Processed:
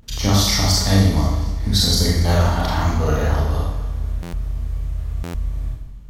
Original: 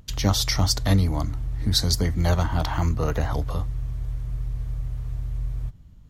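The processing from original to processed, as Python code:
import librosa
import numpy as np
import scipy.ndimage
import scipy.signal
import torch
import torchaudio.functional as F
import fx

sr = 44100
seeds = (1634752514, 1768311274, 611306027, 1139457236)

y = fx.echo_feedback(x, sr, ms=239, feedback_pct=57, wet_db=-18.0)
y = fx.rev_schroeder(y, sr, rt60_s=0.82, comb_ms=27, drr_db=-5.0)
y = fx.buffer_glitch(y, sr, at_s=(4.22, 5.23), block=512, repeats=9)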